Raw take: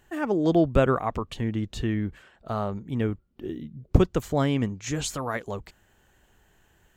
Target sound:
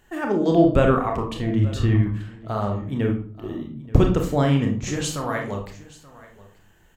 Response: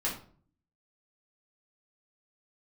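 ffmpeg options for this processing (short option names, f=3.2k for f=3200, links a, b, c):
-filter_complex "[0:a]asettb=1/sr,asplit=3[a][b][c];[a]atrim=end=1.584[d];[b]atrim=start=1.58:end=2.02,asetpts=PTS-STARTPTS,afade=t=in:d=0.004:c=qsin,afade=t=out:st=0.436:d=0.004:c=qsin,equalizer=f=100:t=o:w=0.74:g=9.5[e];[c]atrim=start=2.016[f];[d][e]acrossfade=d=0.004:c1=hsin:c2=qsin[g];[g][f]acrossfade=d=0.004:c1=qsin:c2=hsin,aecho=1:1:880:0.1,asplit=2[h][i];[1:a]atrim=start_sample=2205,adelay=28[j];[i][j]afir=irnorm=-1:irlink=0,volume=-8dB[k];[h][k]amix=inputs=2:normalize=0,volume=1.5dB"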